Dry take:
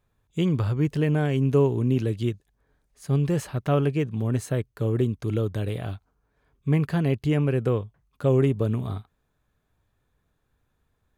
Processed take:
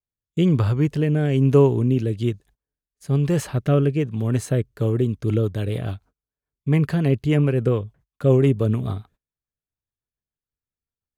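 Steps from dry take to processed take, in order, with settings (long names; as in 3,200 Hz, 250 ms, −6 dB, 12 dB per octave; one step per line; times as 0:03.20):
noise gate −52 dBFS, range −28 dB
rotating-speaker cabinet horn 1.1 Hz, later 7 Hz, at 0:04.51
level +5.5 dB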